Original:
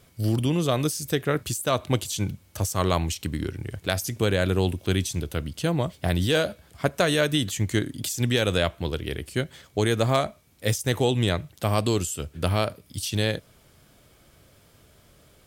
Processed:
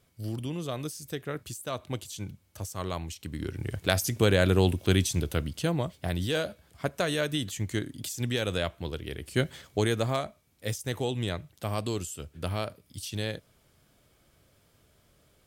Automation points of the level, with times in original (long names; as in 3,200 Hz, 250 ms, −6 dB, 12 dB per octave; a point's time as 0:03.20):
0:03.20 −10.5 dB
0:03.67 +0.5 dB
0:05.32 +0.5 dB
0:06.02 −6.5 dB
0:09.18 −6.5 dB
0:09.45 +2 dB
0:10.22 −8 dB